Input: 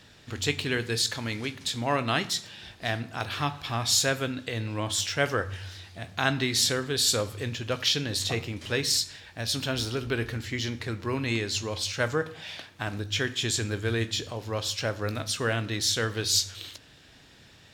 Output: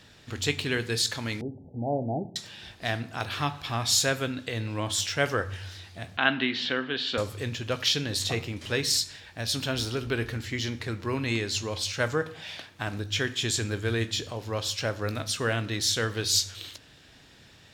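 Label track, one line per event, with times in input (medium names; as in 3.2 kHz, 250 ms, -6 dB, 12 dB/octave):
1.410000	2.360000	steep low-pass 830 Hz 96 dB/octave
6.170000	7.180000	cabinet simulation 240–3400 Hz, peaks and dips at 240 Hz +6 dB, 420 Hz -4 dB, 1.6 kHz +4 dB, 3 kHz +8 dB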